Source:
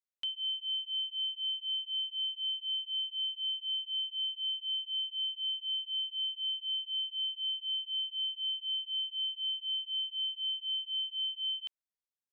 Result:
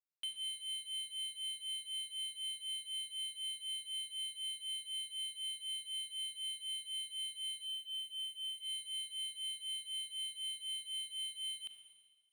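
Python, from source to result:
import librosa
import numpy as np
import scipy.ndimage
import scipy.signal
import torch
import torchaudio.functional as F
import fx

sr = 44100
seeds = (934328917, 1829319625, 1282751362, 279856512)

y = scipy.signal.medfilt(x, 9)
y = fx.fixed_phaser(y, sr, hz=2900.0, stages=8, at=(7.63, 8.58))
y = fx.rev_schroeder(y, sr, rt60_s=1.4, comb_ms=28, drr_db=7.0)
y = y * librosa.db_to_amplitude(-2.0)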